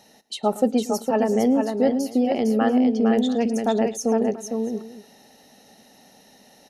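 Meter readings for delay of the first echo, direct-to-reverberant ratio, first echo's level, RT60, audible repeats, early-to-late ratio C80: 0.111 s, none, -18.0 dB, none, 3, none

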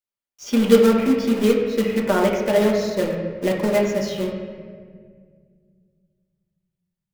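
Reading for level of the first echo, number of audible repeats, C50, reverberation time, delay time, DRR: none, none, 3.5 dB, 1.9 s, none, -2.5 dB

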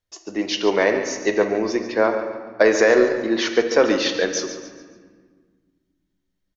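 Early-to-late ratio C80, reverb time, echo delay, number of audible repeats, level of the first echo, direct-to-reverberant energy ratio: 7.5 dB, 1.6 s, 0.141 s, 4, -11.5 dB, 4.5 dB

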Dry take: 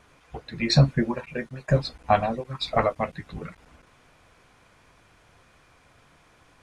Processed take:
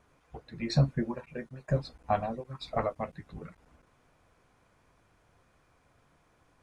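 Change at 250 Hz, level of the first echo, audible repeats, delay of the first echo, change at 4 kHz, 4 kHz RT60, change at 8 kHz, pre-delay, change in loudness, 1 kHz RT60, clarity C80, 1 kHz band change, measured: -7.0 dB, none, none, none, -13.0 dB, none, n/a, none, -8.0 dB, none, none, -8.5 dB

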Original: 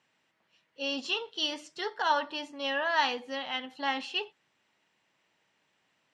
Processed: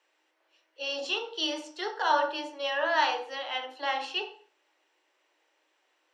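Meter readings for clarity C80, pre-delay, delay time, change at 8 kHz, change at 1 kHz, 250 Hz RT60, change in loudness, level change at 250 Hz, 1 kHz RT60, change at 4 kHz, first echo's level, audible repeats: 13.0 dB, 16 ms, none, +1.5 dB, +2.5 dB, 0.80 s, +1.5 dB, -1.5 dB, 0.40 s, +0.5 dB, none, none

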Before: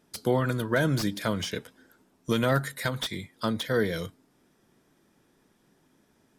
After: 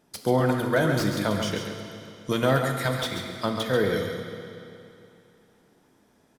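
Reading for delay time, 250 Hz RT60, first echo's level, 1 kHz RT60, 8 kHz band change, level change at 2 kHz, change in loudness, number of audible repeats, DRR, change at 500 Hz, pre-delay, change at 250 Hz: 0.137 s, 2.8 s, -7.0 dB, 2.8 s, +2.0 dB, +2.0 dB, +2.5 dB, 1, 2.0 dB, +4.0 dB, 12 ms, +2.5 dB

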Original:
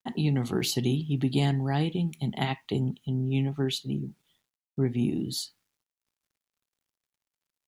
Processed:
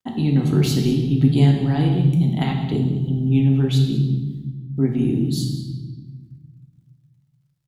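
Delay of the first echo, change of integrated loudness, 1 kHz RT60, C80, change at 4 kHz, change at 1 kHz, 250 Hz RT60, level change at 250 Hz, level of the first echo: 0.192 s, +9.5 dB, 0.95 s, 7.0 dB, +2.5 dB, +3.5 dB, 2.2 s, +9.5 dB, -15.0 dB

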